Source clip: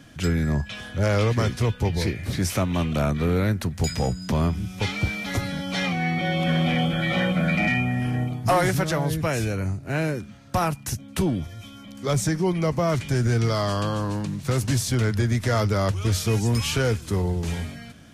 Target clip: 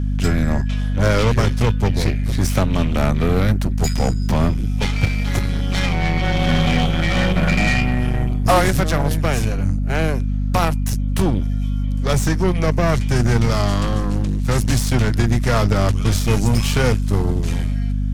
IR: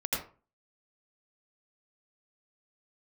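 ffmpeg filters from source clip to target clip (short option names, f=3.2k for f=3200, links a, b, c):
-af "aeval=exprs='0.266*(cos(1*acos(clip(val(0)/0.266,-1,1)))-cos(1*PI/2))+0.0596*(cos(3*acos(clip(val(0)/0.266,-1,1)))-cos(3*PI/2))+0.00668*(cos(4*acos(clip(val(0)/0.266,-1,1)))-cos(4*PI/2))+0.0211*(cos(6*acos(clip(val(0)/0.266,-1,1)))-cos(6*PI/2))':c=same,aeval=exprs='clip(val(0),-1,0.126)':c=same,aeval=exprs='val(0)+0.0447*(sin(2*PI*50*n/s)+sin(2*PI*2*50*n/s)/2+sin(2*PI*3*50*n/s)/3+sin(2*PI*4*50*n/s)/4+sin(2*PI*5*50*n/s)/5)':c=same,volume=8.5dB"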